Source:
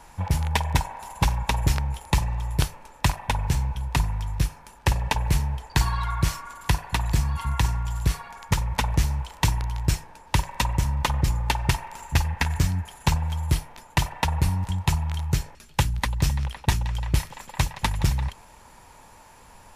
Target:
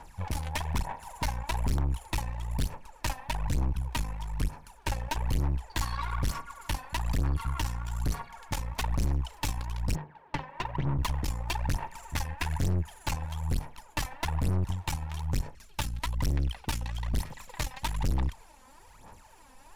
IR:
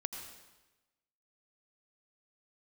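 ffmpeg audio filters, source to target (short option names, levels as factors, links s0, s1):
-filter_complex "[0:a]asplit=3[s0][s1][s2];[s0]afade=t=out:st=9.94:d=0.02[s3];[s1]highpass=130,equalizer=f=150:t=q:w=4:g=8,equalizer=f=400:t=q:w=4:g=5,equalizer=f=2500:t=q:w=4:g=-5,lowpass=f=2900:w=0.5412,lowpass=f=2900:w=1.3066,afade=t=in:st=9.94:d=0.02,afade=t=out:st=10.97:d=0.02[s4];[s2]afade=t=in:st=10.97:d=0.02[s5];[s3][s4][s5]amix=inputs=3:normalize=0,aphaser=in_gain=1:out_gain=1:delay=3.9:decay=0.68:speed=1.1:type=sinusoidal,aeval=exprs='(tanh(11.2*val(0)+0.7)-tanh(0.7))/11.2':c=same,volume=0.631"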